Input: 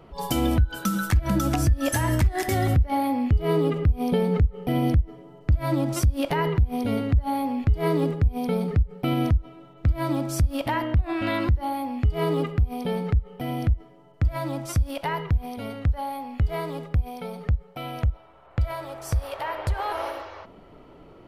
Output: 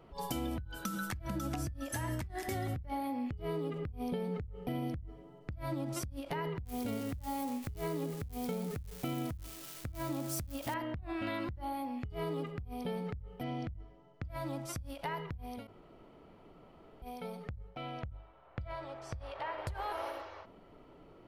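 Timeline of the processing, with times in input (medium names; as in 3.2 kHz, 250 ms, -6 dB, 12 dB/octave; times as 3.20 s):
6.65–10.74 s: zero-crossing glitches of -25.5 dBFS
13.43–14.28 s: low-pass 6.6 kHz 24 dB/octave
15.67–17.02 s: room tone
17.68–19.58 s: low-pass 4.6 kHz
whole clip: hum notches 50/100/150/200 Hz; compression, threshold -25 dBFS; endings held to a fixed fall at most 130 dB/s; trim -8 dB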